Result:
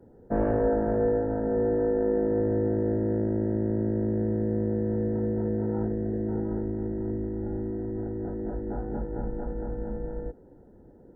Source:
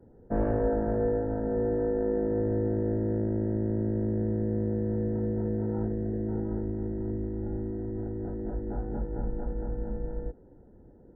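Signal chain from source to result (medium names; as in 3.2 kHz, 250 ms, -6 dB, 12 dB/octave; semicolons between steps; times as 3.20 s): bass shelf 130 Hz -6 dB; trim +3.5 dB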